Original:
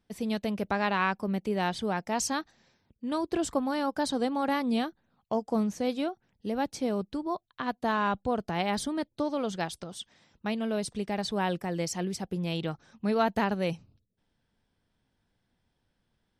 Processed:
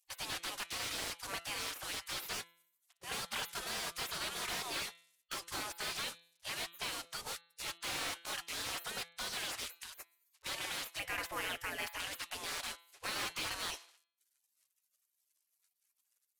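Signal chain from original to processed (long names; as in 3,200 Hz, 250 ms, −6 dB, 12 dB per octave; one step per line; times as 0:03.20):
variable-slope delta modulation 64 kbit/s
0:10.99–0:12.00: octave-band graphic EQ 125/250/500/1,000/2,000/4,000/8,000 Hz −4/+12/+7/−10/+4/−12/−6 dB
gate on every frequency bin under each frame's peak −30 dB weak
in parallel at 0 dB: brickwall limiter −40 dBFS, peak gain reduction 8.5 dB
on the sum: low-shelf EQ 380 Hz −6.5 dB
hum removal 169.3 Hz, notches 25
slew-rate limiting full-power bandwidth 24 Hz
level +8 dB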